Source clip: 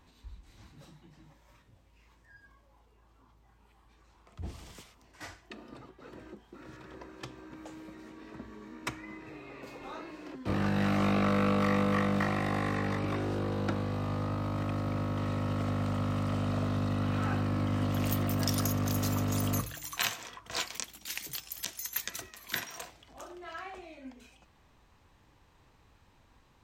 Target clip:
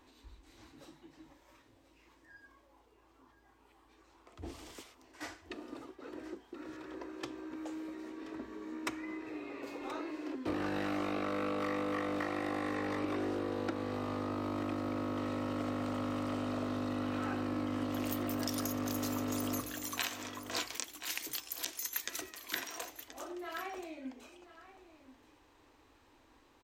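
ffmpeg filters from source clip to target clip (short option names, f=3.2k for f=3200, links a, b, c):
-af "lowshelf=f=230:t=q:w=3:g=-7.5,aecho=1:1:1028:0.168,acompressor=threshold=-32dB:ratio=6"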